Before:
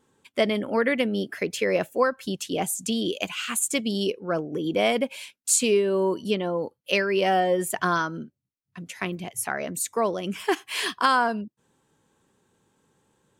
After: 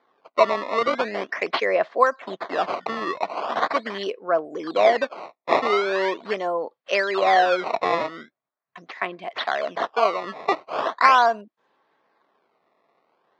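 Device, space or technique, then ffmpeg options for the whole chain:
circuit-bent sampling toy: -filter_complex "[0:a]asettb=1/sr,asplit=3[s0][s1][s2];[s0]atrim=end=1.074[s3];[s1]atrim=start=1.07:end=1.6,asetpts=PTS-STARTPTS,afade=t=in:d=0.004:c=qsin,afade=t=out:st=0.526:d=0.004:c=qsin,highshelf=f=2500:g=10[s4];[s2]atrim=start=1.596[s5];[s3][s4]acrossfade=d=0.004:c1=hsin:c2=qsin[s6];[s6][s5]acrossfade=d=0.004:c1=qsin:c2=hsin,acrusher=samples=16:mix=1:aa=0.000001:lfo=1:lforange=25.6:lforate=0.41,highpass=430,equalizer=f=670:t=q:w=4:g=8,equalizer=f=1100:t=q:w=4:g=7,equalizer=f=1900:t=q:w=4:g=4,equalizer=f=2900:t=q:w=4:g=-4,lowpass=f=4300:w=0.5412,lowpass=f=4300:w=1.3066,volume=1.19"

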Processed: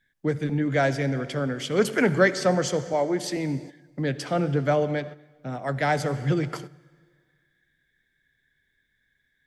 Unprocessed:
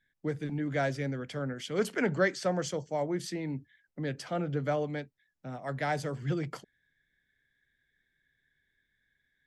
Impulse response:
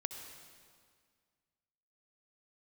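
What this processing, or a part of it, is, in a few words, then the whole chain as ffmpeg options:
keyed gated reverb: -filter_complex "[0:a]asplit=3[s0][s1][s2];[1:a]atrim=start_sample=2205[s3];[s1][s3]afir=irnorm=-1:irlink=0[s4];[s2]apad=whole_len=417513[s5];[s4][s5]sidechaingate=range=0.282:threshold=0.00316:ratio=16:detection=peak,volume=0.75[s6];[s0][s6]amix=inputs=2:normalize=0,asettb=1/sr,asplit=3[s7][s8][s9];[s7]atrim=end=2.934[s10];[s8]atrim=start=2.93:end=3.37,asetpts=PTS-STARTPTS,afade=t=in:d=0.004:c=qsin,afade=t=out:st=0.436:d=0.004:c=qsin,highpass=220[s11];[s9]atrim=start=3.366[s12];[s10][s11]acrossfade=d=0.004:c1=hsin:c2=qsin[s13];[s13][s12]acrossfade=d=0.004:c1=qsin:c2=hsin,volume=1.5"

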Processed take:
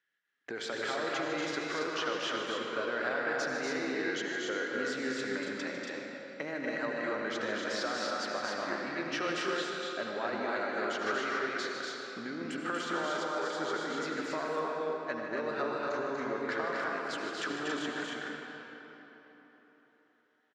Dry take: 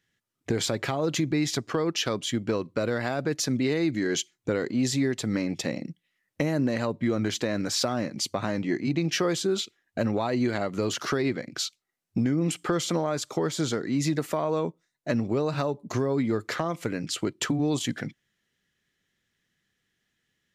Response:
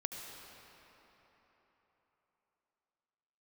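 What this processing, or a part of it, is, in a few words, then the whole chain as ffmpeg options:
station announcement: -filter_complex "[0:a]highpass=390,lowpass=4700,equalizer=f=1500:t=o:w=0.58:g=9.5,aecho=1:1:151.6|239.1|277:0.282|0.631|0.631[s0];[1:a]atrim=start_sample=2205[s1];[s0][s1]afir=irnorm=-1:irlink=0,volume=0.422"

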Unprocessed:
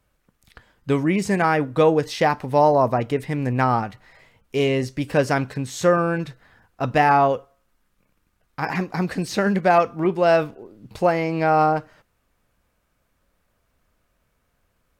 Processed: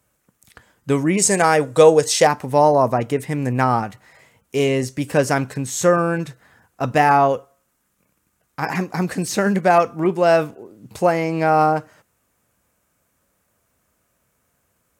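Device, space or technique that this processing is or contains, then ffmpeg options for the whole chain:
budget condenser microphone: -filter_complex "[0:a]asettb=1/sr,asplit=3[s0][s1][s2];[s0]atrim=end=1.174[s3];[s1]atrim=start=1.17:end=2.27,asetpts=PTS-STARTPTS,afade=t=in:d=0.004:c=qsin,afade=t=out:st=1.096:d=0.004:c=qsin,equalizer=f=250:t=o:w=1:g=-6,equalizer=f=500:t=o:w=1:g=6,equalizer=f=4000:t=o:w=1:g=5,equalizer=f=8000:t=o:w=1:g=11[s4];[s2]atrim=start=2.266[s5];[s3][s4]acrossfade=d=0.004:c1=hsin:c2=qsin[s6];[s6][s5]acrossfade=d=0.004:c1=qsin:c2=hsin,highpass=84,highshelf=f=5600:t=q:w=1.5:g=6.5,volume=1.26"

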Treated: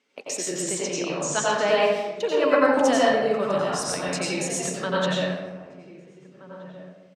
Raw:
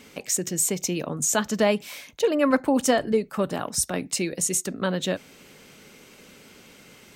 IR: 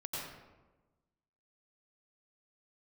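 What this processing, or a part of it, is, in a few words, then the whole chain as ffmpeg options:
supermarket ceiling speaker: -filter_complex "[0:a]agate=range=0.112:threshold=0.0158:ratio=16:detection=peak,asettb=1/sr,asplit=3[s0][s1][s2];[s0]atrim=end=0.624[s3];[s1]atrim=start=0.62:end=1.54,asetpts=PTS-STARTPTS,afade=t=in:d=0.004:c=qsin,afade=t=out:st=0.916:d=0.004:c=qsin,lowpass=f=8500:w=0.5412,lowpass=f=8500:w=1.3066[s4];[s2]atrim=start=1.536[s5];[s3][s4]acrossfade=d=0.004:c1=hsin:c2=qsin[s6];[s6][s5]acrossfade=d=0.004:c1=qsin:c2=hsin,asubboost=boost=11:cutoff=99,highpass=330,lowpass=5900[s7];[1:a]atrim=start_sample=2205[s8];[s7][s8]afir=irnorm=-1:irlink=0,asplit=2[s9][s10];[s10]adelay=1574,volume=0.178,highshelf=f=4000:g=-35.4[s11];[s9][s11]amix=inputs=2:normalize=0,volume=1.5"

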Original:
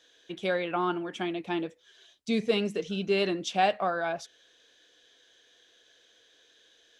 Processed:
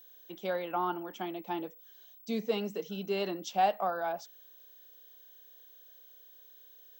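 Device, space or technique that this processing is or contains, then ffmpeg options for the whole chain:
old television with a line whistle: -af "highpass=f=180:w=0.5412,highpass=f=180:w=1.3066,equalizer=f=260:t=q:w=4:g=-3,equalizer=f=370:t=q:w=4:g=-3,equalizer=f=860:t=q:w=4:g=6,equalizer=f=1700:t=q:w=4:g=-5,equalizer=f=2400:t=q:w=4:g=-7,equalizer=f=3600:t=q:w=4:g=-5,lowpass=f=7700:w=0.5412,lowpass=f=7700:w=1.3066,aeval=exprs='val(0)+0.00355*sin(2*PI*15734*n/s)':c=same,volume=0.631"

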